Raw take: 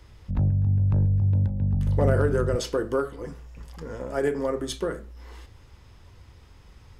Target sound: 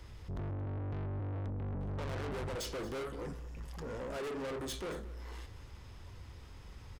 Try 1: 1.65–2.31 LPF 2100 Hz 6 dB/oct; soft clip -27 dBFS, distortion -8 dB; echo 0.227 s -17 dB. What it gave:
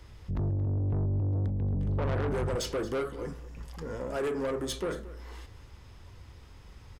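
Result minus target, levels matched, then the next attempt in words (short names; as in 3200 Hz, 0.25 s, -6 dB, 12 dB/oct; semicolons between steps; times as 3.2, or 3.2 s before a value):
soft clip: distortion -5 dB
1.65–2.31 LPF 2100 Hz 6 dB/oct; soft clip -37.5 dBFS, distortion -3 dB; echo 0.227 s -17 dB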